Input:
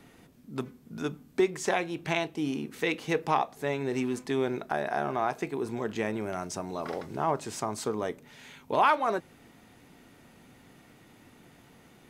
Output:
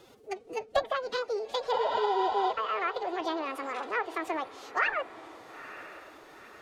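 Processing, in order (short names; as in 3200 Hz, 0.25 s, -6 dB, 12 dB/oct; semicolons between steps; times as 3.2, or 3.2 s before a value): wide varispeed 1.83×; spectral repair 1.76–2.49, 510–8100 Hz before; treble ducked by the level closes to 1800 Hz, closed at -24 dBFS; formant-preserving pitch shift +8.5 st; diffused feedback echo 0.927 s, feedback 47%, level -15 dB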